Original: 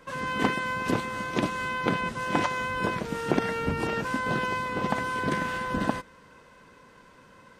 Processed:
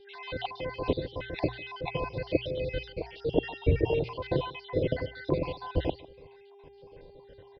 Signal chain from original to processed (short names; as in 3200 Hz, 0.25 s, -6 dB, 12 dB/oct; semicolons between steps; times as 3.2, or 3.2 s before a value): random spectral dropouts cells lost 61%; low shelf 210 Hz +6.5 dB; notches 60/120 Hz; buzz 400 Hz, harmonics 9, -58 dBFS -9 dB/oct; air absorption 160 m; fixed phaser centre 520 Hz, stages 4; on a send: echo 0.151 s -21 dB; on the sum: downsampling 11025 Hz; stepped notch 6.6 Hz 940–1900 Hz; gain +7 dB